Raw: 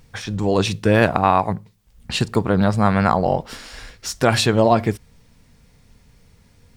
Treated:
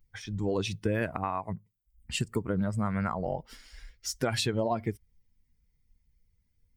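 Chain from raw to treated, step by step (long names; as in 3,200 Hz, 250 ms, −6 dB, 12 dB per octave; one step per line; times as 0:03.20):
spectral dynamics exaggerated over time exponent 1.5
downward compressor 5 to 1, threshold −21 dBFS, peak gain reduction 9 dB
0:00.88–0:03.35: thirty-one-band graphic EQ 800 Hz −6 dB, 4,000 Hz −9 dB, 8,000 Hz +8 dB, 12,500 Hz +7 dB
level −4.5 dB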